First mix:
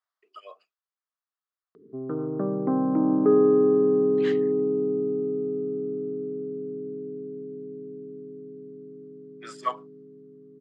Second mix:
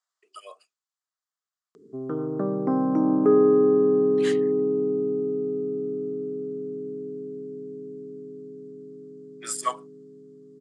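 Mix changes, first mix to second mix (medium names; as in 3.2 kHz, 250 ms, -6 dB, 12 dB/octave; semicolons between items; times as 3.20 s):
background: remove distance through air 220 m; master: remove distance through air 210 m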